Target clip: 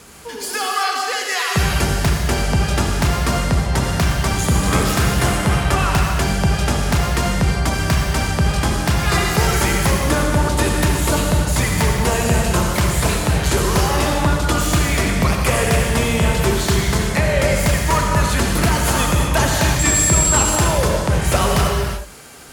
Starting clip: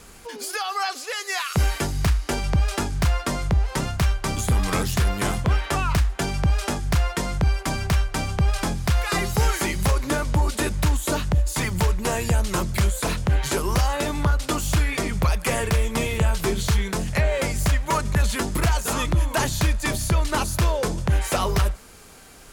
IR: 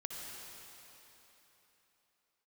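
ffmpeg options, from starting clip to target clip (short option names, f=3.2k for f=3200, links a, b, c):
-filter_complex "[0:a]highpass=70,asettb=1/sr,asplit=3[a][b][c];[a]atrim=end=19.794[d];[b]atrim=start=19.79:end=20.43,asetpts=PTS-STARTPTS,afade=t=in:d=0.004:c=qsin,afade=t=out:st=0.636:d=0.004:c=qsin,aeval=exprs='val(0)+0.0631*sin(2*PI*7600*n/s)':c=same[e];[c]atrim=start=20.426[f];[d][e]acrossfade=d=0.004:c1=hsin:c2=qsin[g];[g][f]acrossfade=d=0.004:c1=qsin:c2=hsin[h];[1:a]atrim=start_sample=2205,afade=t=out:st=0.42:d=0.01,atrim=end_sample=18963[i];[h][i]afir=irnorm=-1:irlink=0,volume=8.5dB"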